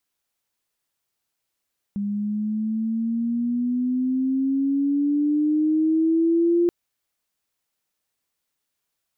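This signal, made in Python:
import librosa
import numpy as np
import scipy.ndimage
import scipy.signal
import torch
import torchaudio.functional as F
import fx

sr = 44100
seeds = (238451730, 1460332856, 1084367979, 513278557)

y = fx.riser_tone(sr, length_s=4.73, level_db=-15.5, wave='sine', hz=201.0, rise_st=9.5, swell_db=7.5)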